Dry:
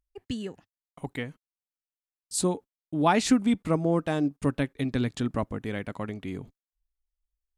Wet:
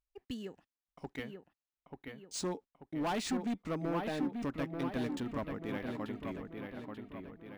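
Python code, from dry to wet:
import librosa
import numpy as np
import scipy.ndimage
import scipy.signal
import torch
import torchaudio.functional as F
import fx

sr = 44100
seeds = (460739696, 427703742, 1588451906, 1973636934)

y = fx.peak_eq(x, sr, hz=110.0, db=-7.0, octaves=1.1)
y = np.clip(10.0 ** (24.0 / 20.0) * y, -1.0, 1.0) / 10.0 ** (24.0 / 20.0)
y = fx.echo_wet_lowpass(y, sr, ms=887, feedback_pct=50, hz=3400.0, wet_db=-5)
y = np.interp(np.arange(len(y)), np.arange(len(y))[::3], y[::3])
y = y * librosa.db_to_amplitude(-7.0)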